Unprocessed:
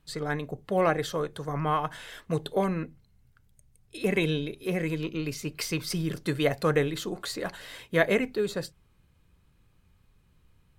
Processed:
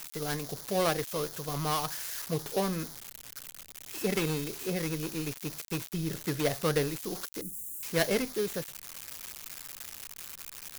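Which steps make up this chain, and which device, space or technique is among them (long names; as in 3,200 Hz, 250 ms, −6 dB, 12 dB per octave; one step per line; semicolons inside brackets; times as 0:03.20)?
budget class-D amplifier (gap after every zero crossing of 0.18 ms; spike at every zero crossing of −18.5 dBFS)
0:07.41–0:07.83: Chebyshev band-stop filter 330–7,700 Hz, order 4
level −3.5 dB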